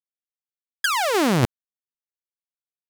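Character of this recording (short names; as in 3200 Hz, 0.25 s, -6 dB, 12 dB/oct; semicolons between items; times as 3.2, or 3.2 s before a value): a quantiser's noise floor 12-bit, dither none; random-step tremolo 3.5 Hz, depth 65%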